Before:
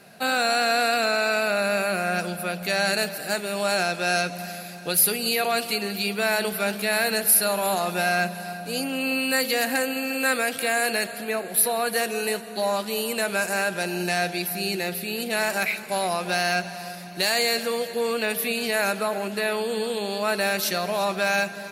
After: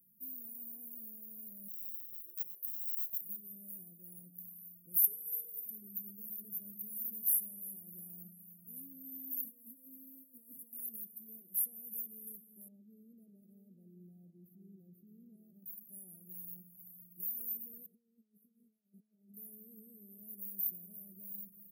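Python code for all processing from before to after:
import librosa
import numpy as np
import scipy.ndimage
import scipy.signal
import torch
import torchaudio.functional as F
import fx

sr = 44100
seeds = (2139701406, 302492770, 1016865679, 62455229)

y = fx.chain(x, sr, fx.ellip_highpass(hz=380.0, order=4, stop_db=40),
    fx.clip_hard(threshold_db=-30.0),
    fx.env_flatten(amount_pct=70), at=(1.68, 3.21))
y = fx.chain(y, sr, fx.highpass(hz=48.0, slope=12),
    fx.low_shelf(hz=140.0, db=-10.0),
    fx.comb(ms=2.2, depth=0.97), at=(5.04, 5.66))
y = fx.chain(y, sr, fx.cvsd(bps=64000),
    fx.highpass(hz=150.0, slope=12),
    fx.over_compress(threshold_db=-31.0, ratio=-1.0), at=(9.44, 10.73))
y = fx.chain(y, sr, fx.moving_average(points=35),
    fx.echo_single(ms=610, db=-11.5), at=(12.68, 15.66))
y = fx.chain(y, sr, fx.comb_fb(f0_hz=210.0, decay_s=0.22, harmonics='all', damping=0.0, mix_pct=70),
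    fx.over_compress(threshold_db=-39.0, ratio=-0.5),
    fx.air_absorb(metres=89.0), at=(17.86, 19.34))
y = scipy.signal.sosfilt(scipy.signal.cheby2(4, 80, [1100.0, 5800.0], 'bandstop', fs=sr, output='sos'), y)
y = np.diff(y, prepend=0.0)
y = y * librosa.db_to_amplitude(9.5)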